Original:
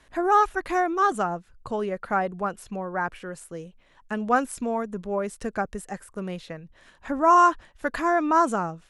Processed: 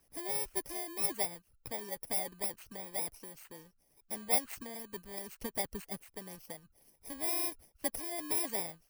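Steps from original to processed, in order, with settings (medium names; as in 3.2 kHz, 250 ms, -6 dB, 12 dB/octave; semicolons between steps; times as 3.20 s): bit-reversed sample order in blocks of 32 samples; harmonic-percussive split harmonic -12 dB; trim -6.5 dB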